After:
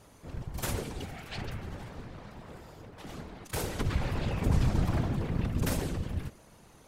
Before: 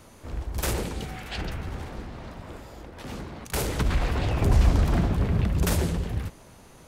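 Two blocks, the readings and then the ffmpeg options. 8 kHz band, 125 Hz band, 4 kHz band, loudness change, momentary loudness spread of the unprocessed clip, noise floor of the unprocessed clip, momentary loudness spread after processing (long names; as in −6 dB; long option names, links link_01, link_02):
−6.0 dB, −6.0 dB, −6.0 dB, −6.5 dB, 19 LU, −50 dBFS, 18 LU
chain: -af "afftfilt=real='hypot(re,im)*cos(2*PI*random(0))':imag='hypot(re,im)*sin(2*PI*random(1))':win_size=512:overlap=0.75"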